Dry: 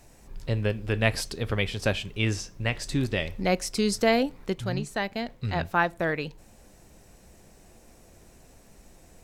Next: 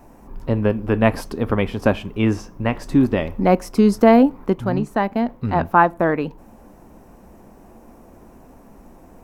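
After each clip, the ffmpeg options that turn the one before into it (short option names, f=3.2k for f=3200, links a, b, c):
-af "equalizer=f=125:t=o:w=1:g=-3,equalizer=f=250:t=o:w=1:g=9,equalizer=f=1k:t=o:w=1:g=9,equalizer=f=2k:t=o:w=1:g=-4,equalizer=f=4k:t=o:w=1:g=-10,equalizer=f=8k:t=o:w=1:g=-11,volume=5.5dB"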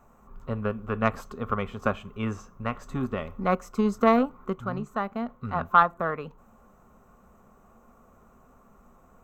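-af "aeval=exprs='0.891*(cos(1*acos(clip(val(0)/0.891,-1,1)))-cos(1*PI/2))+0.112*(cos(3*acos(clip(val(0)/0.891,-1,1)))-cos(3*PI/2))':c=same,superequalizer=6b=0.355:10b=3.55:14b=0.562:15b=1.41:16b=0.316,volume=-7dB"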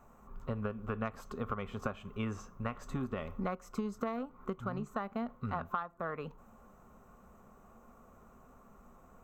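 -af "acompressor=threshold=-30dB:ratio=16,volume=-2dB"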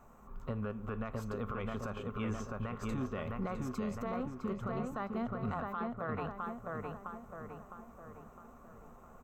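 -filter_complex "[0:a]asplit=2[a][b];[b]adelay=659,lowpass=f=2.6k:p=1,volume=-4dB,asplit=2[c][d];[d]adelay=659,lowpass=f=2.6k:p=1,volume=0.52,asplit=2[e][f];[f]adelay=659,lowpass=f=2.6k:p=1,volume=0.52,asplit=2[g][h];[h]adelay=659,lowpass=f=2.6k:p=1,volume=0.52,asplit=2[i][j];[j]adelay=659,lowpass=f=2.6k:p=1,volume=0.52,asplit=2[k][l];[l]adelay=659,lowpass=f=2.6k:p=1,volume=0.52,asplit=2[m][n];[n]adelay=659,lowpass=f=2.6k:p=1,volume=0.52[o];[c][e][g][i][k][m][o]amix=inputs=7:normalize=0[p];[a][p]amix=inputs=2:normalize=0,alimiter=level_in=5dB:limit=-24dB:level=0:latency=1:release=13,volume=-5dB,volume=1dB"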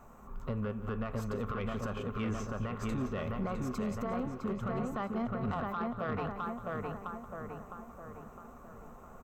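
-af "asoftclip=type=tanh:threshold=-31dB,aecho=1:1:178:0.188,volume=4dB"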